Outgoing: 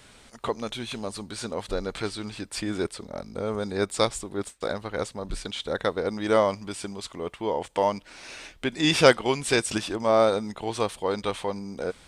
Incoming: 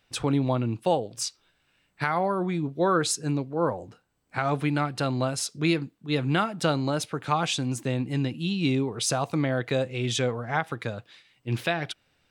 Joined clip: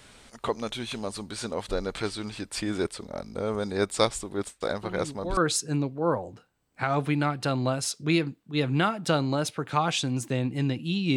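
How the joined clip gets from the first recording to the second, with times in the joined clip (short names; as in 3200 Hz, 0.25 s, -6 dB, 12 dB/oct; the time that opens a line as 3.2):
outgoing
4.83 add incoming from 2.38 s 0.54 s -10 dB
5.37 switch to incoming from 2.92 s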